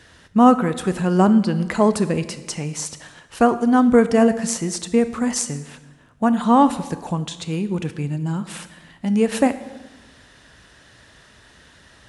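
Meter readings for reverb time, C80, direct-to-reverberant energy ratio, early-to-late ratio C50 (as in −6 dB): 1.1 s, 15.5 dB, 12.0 dB, 14.0 dB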